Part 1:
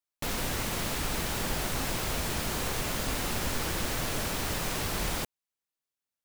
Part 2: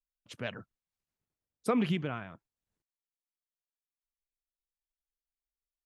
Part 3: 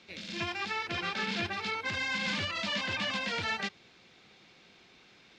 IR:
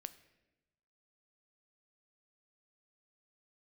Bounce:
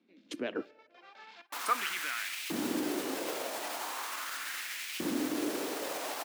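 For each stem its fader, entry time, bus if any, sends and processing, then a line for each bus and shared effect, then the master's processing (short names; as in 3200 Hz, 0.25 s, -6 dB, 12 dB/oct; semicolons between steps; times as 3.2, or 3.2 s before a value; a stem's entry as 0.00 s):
-3.0 dB, 1.30 s, no bus, no send, limiter -25.5 dBFS, peak gain reduction 6.5 dB
+2.5 dB, 0.00 s, bus A, send -5.5 dB, gate -52 dBFS, range -13 dB
-18.5 dB, 0.00 s, bus A, send -23.5 dB, auto duck -9 dB, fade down 0.25 s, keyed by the second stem
bus A: 0.0 dB, step gate "xxxxx..xx.x.x" 191 bpm -12 dB; limiter -25 dBFS, peak gain reduction 9 dB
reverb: on, RT60 1.0 s, pre-delay 7 ms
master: bell 290 Hz +12.5 dB 0.6 oct; LFO high-pass saw up 0.4 Hz 220–2600 Hz; mismatched tape noise reduction decoder only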